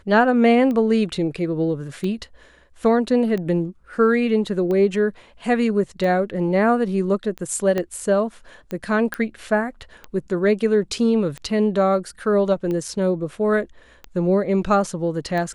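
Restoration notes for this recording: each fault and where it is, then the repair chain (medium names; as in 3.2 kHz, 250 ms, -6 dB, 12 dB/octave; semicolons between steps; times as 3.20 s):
tick 45 rpm -17 dBFS
7.78 s: pop -11 dBFS
9.14 s: pop -11 dBFS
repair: de-click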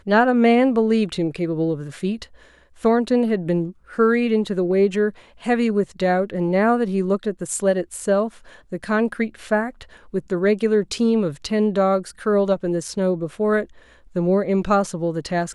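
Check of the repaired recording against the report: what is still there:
7.78 s: pop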